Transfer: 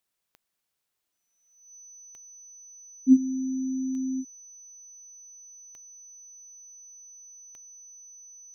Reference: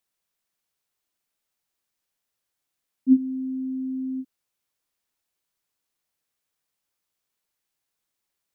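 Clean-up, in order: de-click; band-stop 6 kHz, Q 30

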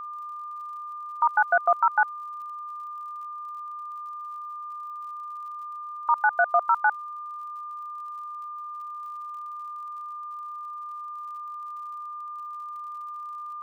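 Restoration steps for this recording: de-click; band-stop 1.2 kHz, Q 30; noise reduction 30 dB, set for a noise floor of -37 dBFS

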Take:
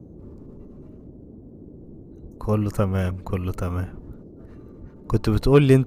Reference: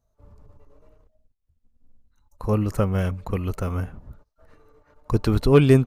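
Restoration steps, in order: 2.22–2.34 s: high-pass 140 Hz 24 dB/octave; 3.55–3.67 s: high-pass 140 Hz 24 dB/octave; 4.80–4.92 s: high-pass 140 Hz 24 dB/octave; noise print and reduce 23 dB

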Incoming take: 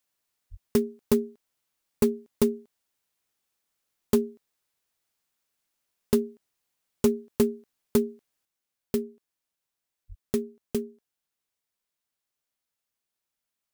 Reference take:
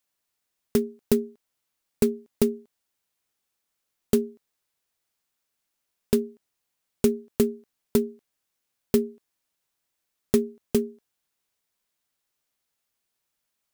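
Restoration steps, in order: clip repair -13 dBFS; de-plosive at 0.50/10.08 s; gain correction +6 dB, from 8.45 s

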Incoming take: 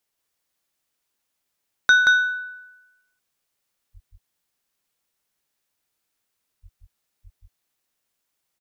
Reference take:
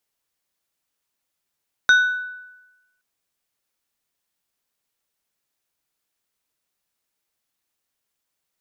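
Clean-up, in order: de-plosive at 3.93/6.62/7.23 s; inverse comb 178 ms -3 dB

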